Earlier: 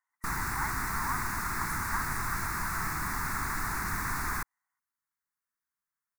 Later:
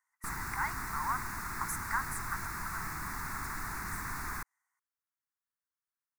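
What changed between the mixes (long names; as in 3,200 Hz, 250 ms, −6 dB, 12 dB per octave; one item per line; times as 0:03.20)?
speech: add high-shelf EQ 2,100 Hz +9 dB
background −6.0 dB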